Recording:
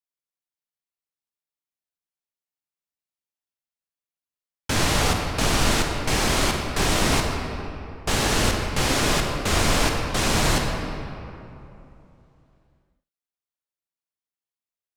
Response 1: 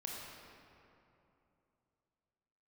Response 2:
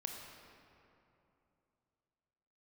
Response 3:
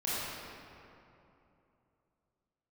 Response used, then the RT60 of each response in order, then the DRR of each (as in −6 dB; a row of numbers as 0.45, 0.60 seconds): 2; 2.9, 2.9, 2.9 seconds; −3.0, 1.5, −10.0 decibels